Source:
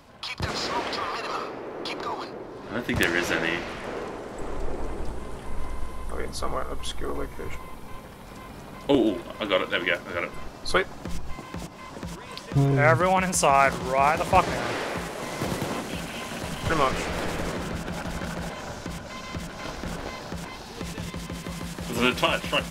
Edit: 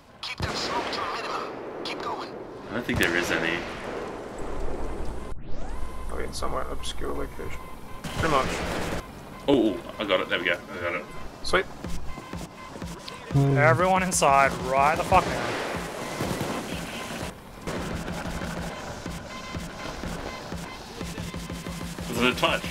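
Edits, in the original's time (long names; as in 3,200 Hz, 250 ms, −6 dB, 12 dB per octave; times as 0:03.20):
0:05.32: tape start 0.45 s
0:08.04–0:08.41: swap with 0:16.51–0:17.47
0:09.98–0:10.38: time-stretch 1.5×
0:12.20–0:12.47: reverse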